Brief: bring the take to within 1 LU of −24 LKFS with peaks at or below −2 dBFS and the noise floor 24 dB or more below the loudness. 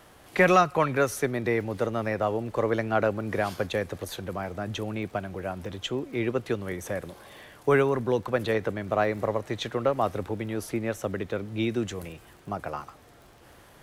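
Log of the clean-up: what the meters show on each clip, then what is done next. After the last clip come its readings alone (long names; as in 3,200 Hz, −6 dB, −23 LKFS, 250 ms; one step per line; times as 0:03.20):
crackle rate 23 per second; integrated loudness −28.0 LKFS; sample peak −8.0 dBFS; target loudness −24.0 LKFS
→ click removal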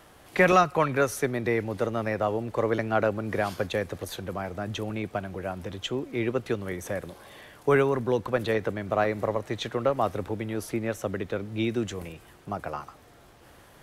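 crackle rate 0.14 per second; integrated loudness −28.0 LKFS; sample peak −8.0 dBFS; target loudness −24.0 LKFS
→ level +4 dB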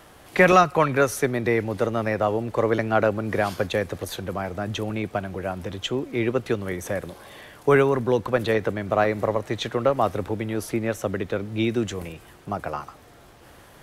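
integrated loudness −24.0 LKFS; sample peak −4.0 dBFS; background noise floor −50 dBFS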